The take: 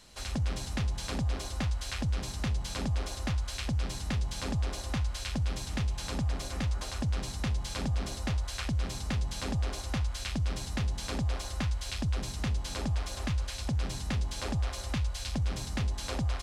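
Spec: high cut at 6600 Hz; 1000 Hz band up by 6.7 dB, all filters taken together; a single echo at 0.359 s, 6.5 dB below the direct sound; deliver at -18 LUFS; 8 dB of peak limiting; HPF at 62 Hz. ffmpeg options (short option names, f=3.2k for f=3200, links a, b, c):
-af "highpass=62,lowpass=6.6k,equalizer=f=1k:t=o:g=8.5,alimiter=level_in=2.5dB:limit=-24dB:level=0:latency=1,volume=-2.5dB,aecho=1:1:359:0.473,volume=18dB"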